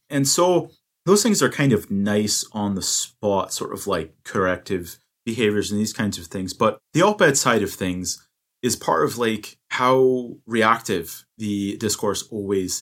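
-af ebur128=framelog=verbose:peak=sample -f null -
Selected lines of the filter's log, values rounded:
Integrated loudness:
  I:         -21.4 LUFS
  Threshold: -31.6 LUFS
Loudness range:
  LRA:         3.5 LU
  Threshold: -41.8 LUFS
  LRA low:   -24.1 LUFS
  LRA high:  -20.6 LUFS
Sample peak:
  Peak:       -2.1 dBFS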